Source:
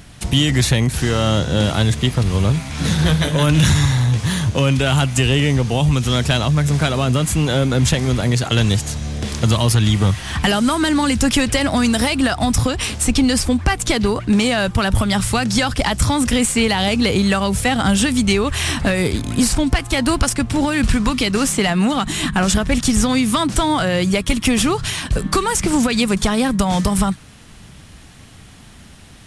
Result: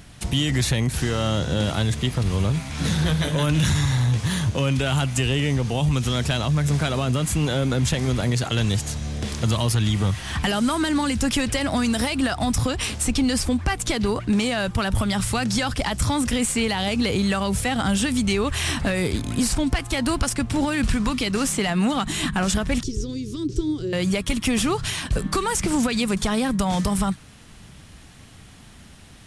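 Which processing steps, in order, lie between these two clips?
peak limiter -9.5 dBFS, peak gain reduction 3.5 dB; 22.83–23.93 s: FFT filter 130 Hz 0 dB, 220 Hz -14 dB, 390 Hz +11 dB, 660 Hz -29 dB, 1.1 kHz -25 dB, 2.1 kHz -22 dB, 5.7 kHz -5 dB, 10 kHz -21 dB; trim -4 dB

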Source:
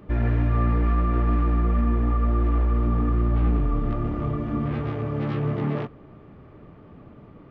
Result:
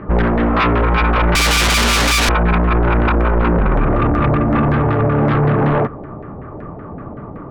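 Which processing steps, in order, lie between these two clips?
LFO low-pass saw down 5.3 Hz 670–1800 Hz; 1.35–2.29 s: overdrive pedal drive 43 dB, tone 2.3 kHz, clips at -11 dBFS; sine folder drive 11 dB, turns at -10.5 dBFS

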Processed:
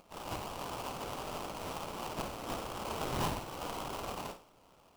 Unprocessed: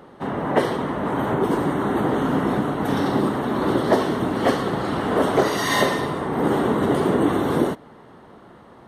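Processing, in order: high-pass 1.2 kHz 24 dB/octave; peaking EQ 2.9 kHz -6 dB 2 oct; plain phase-vocoder stretch 0.56×; sample-rate reducer 1.9 kHz, jitter 20%; saturation -23.5 dBFS, distortion -24 dB; on a send: flutter echo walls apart 9 m, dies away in 0.33 s; on the sum: trim -1 dB

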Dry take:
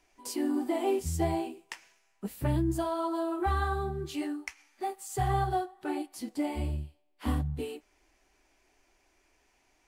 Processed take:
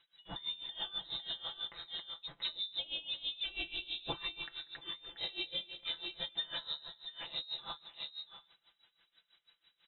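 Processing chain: treble shelf 2.1 kHz +5.5 dB; comb 5.9 ms, depth 79%; multi-tap echo 274/683 ms -15.5/-9.5 dB; level-controlled noise filter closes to 1.5 kHz, open at -23 dBFS; on a send: thinning echo 190 ms, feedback 67%, level -23 dB; on the sum: frequency inversion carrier 3.9 kHz; in parallel at +2.5 dB: peak limiter -22.5 dBFS, peak gain reduction 10 dB; on the sum: compression, threshold -25 dBFS, peak gain reduction 9 dB; tilt shelf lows +6.5 dB; logarithmic tremolo 6.1 Hz, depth 19 dB; trim -2.5 dB

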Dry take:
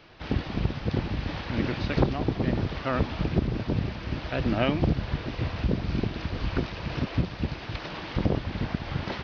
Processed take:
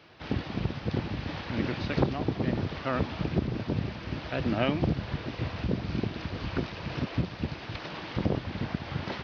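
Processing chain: high-pass 78 Hz; trim -2 dB

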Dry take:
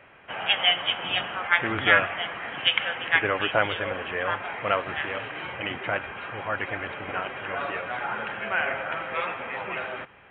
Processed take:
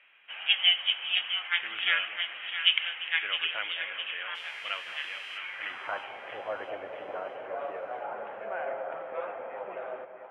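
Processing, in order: 4.34–5.37 s: mains buzz 400 Hz, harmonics 30, -47 dBFS -1 dB/octave; band-pass sweep 2.9 kHz -> 590 Hz, 5.33–6.23 s; two-band feedback delay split 790 Hz, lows 213 ms, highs 661 ms, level -9 dB

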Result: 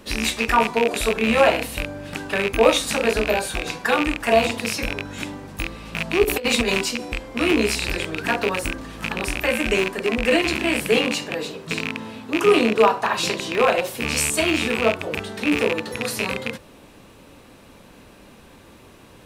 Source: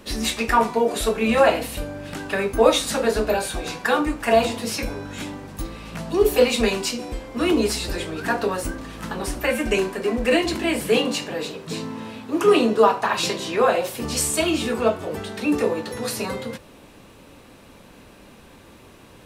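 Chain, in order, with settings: rattle on loud lows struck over -31 dBFS, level -11 dBFS; 6.23–6.84 s: compressor with a negative ratio -20 dBFS, ratio -0.5

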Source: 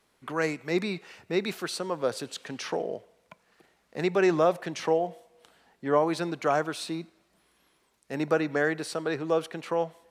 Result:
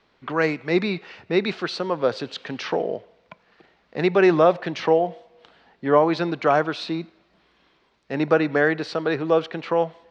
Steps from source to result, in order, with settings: low-pass 4.6 kHz 24 dB/octave; trim +6.5 dB

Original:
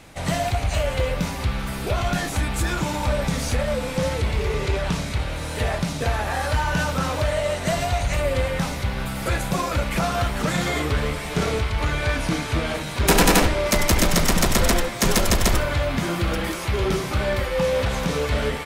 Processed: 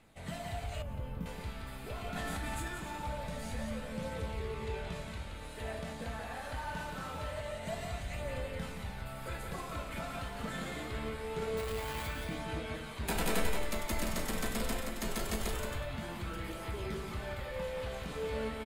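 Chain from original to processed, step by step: 11.57–12.08 s: one-bit comparator; peaking EQ 5.7 kHz -7.5 dB 0.42 oct; feedback comb 220 Hz, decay 0.58 s, harmonics all, mix 80%; loudspeakers at several distances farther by 60 m -5 dB, 94 m -12 dB; phaser 0.24 Hz, delay 4.2 ms, feedback 21%; 0.82–1.26 s: ten-band graphic EQ 125 Hz +4 dB, 250 Hz +7 dB, 500 Hz -10 dB, 2 kHz -9 dB, 4 kHz -10 dB, 8 kHz -11 dB; 2.16–2.68 s: level flattener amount 100%; trim -6 dB

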